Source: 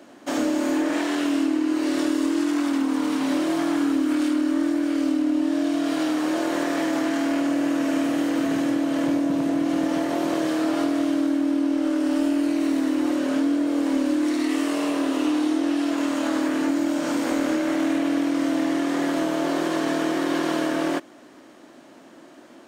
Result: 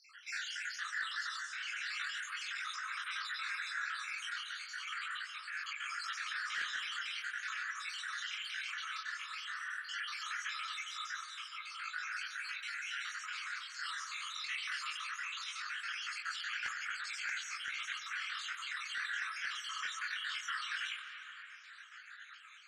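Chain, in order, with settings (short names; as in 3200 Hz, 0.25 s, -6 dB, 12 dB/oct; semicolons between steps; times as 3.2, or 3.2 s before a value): random spectral dropouts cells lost 67%; steep high-pass 1300 Hz 72 dB/oct; high shelf 8600 Hz -10.5 dB; in parallel at 0 dB: negative-ratio compressor -49 dBFS, ratio -1; on the sum: chorus voices 2, 0.18 Hz, delay 21 ms, depth 3.6 ms; wavefolder -31 dBFS; air absorption 70 m; tape echo 0.238 s, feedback 67%, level -12 dB, low-pass 2000 Hz; spring tank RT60 3.2 s, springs 44/52/56 ms, chirp 55 ms, DRR 7.5 dB; gain +2 dB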